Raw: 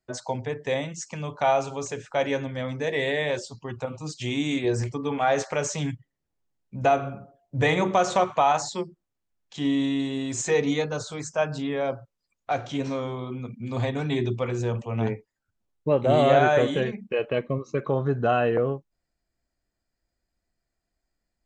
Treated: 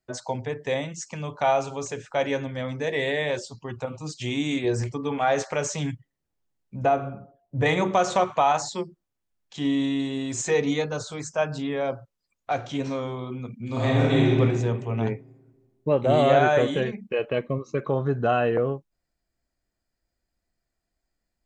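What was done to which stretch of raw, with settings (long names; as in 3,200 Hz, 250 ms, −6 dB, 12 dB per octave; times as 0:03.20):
0:06.83–0:07.66: high-shelf EQ 2,400 Hz −10.5 dB
0:13.65–0:14.39: thrown reverb, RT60 1.7 s, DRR −5 dB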